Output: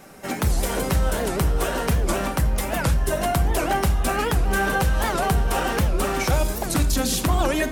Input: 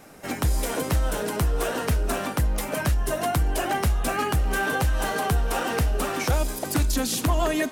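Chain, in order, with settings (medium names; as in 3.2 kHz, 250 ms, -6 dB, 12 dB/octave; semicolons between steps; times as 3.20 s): reverberation RT60 0.85 s, pre-delay 5 ms, DRR 8 dB; warped record 78 rpm, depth 250 cents; trim +2 dB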